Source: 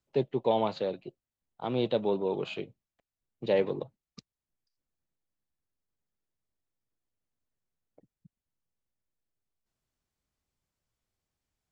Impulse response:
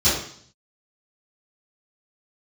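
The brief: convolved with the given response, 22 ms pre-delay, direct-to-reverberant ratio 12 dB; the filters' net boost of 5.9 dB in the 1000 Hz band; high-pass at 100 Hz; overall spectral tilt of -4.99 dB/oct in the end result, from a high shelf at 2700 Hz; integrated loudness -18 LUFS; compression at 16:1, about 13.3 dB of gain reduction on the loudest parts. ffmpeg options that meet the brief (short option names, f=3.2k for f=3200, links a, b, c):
-filter_complex "[0:a]highpass=100,equalizer=f=1k:t=o:g=8,highshelf=f=2.7k:g=-4.5,acompressor=threshold=-32dB:ratio=16,asplit=2[a][b];[1:a]atrim=start_sample=2205,adelay=22[c];[b][c]afir=irnorm=-1:irlink=0,volume=-29.5dB[d];[a][d]amix=inputs=2:normalize=0,volume=21dB"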